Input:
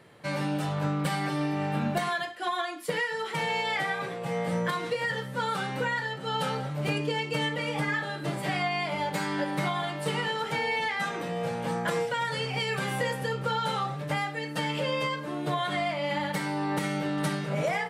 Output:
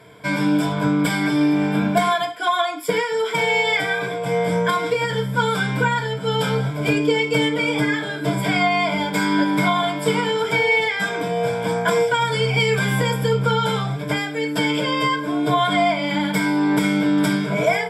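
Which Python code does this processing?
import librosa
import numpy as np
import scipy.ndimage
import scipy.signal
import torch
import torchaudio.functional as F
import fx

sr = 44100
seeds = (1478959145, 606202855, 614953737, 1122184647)

y = fx.ripple_eq(x, sr, per_octave=1.7, db=15)
y = y * 10.0 ** (6.5 / 20.0)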